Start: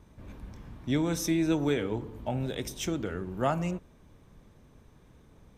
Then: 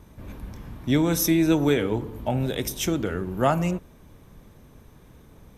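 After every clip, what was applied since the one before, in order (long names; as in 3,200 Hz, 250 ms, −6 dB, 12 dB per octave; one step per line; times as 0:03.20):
parametric band 12,000 Hz +12.5 dB 0.33 octaves
level +6.5 dB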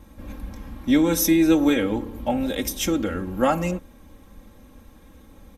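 comb filter 3.7 ms, depth 82%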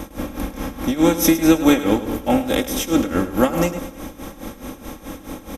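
compressor on every frequency bin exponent 0.6
amplitude tremolo 4.7 Hz, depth 91%
repeating echo 105 ms, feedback 44%, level −13.5 dB
level +4.5 dB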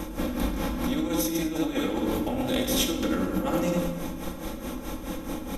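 compressor whose output falls as the input rises −22 dBFS, ratio −1
dynamic equaliser 3,900 Hz, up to +6 dB, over −48 dBFS, Q 3.1
rectangular room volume 370 cubic metres, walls mixed, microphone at 0.8 metres
level −7 dB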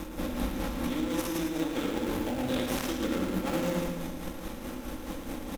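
gap after every zero crossing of 0.26 ms
single-tap delay 113 ms −7 dB
level −4 dB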